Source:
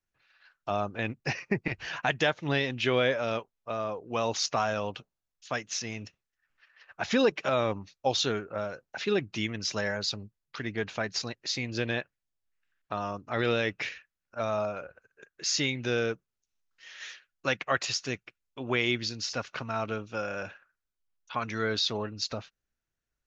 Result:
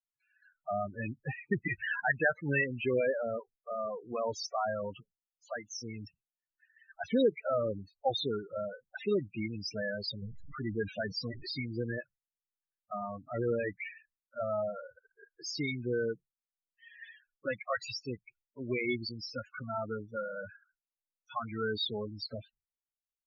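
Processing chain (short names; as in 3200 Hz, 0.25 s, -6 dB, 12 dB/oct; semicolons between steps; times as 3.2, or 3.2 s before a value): 10.22–11.61 zero-crossing step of -34.5 dBFS; gate with hold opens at -60 dBFS; loudest bins only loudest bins 8; 1.49–2.64 band shelf 2500 Hz +10 dB; gain -2 dB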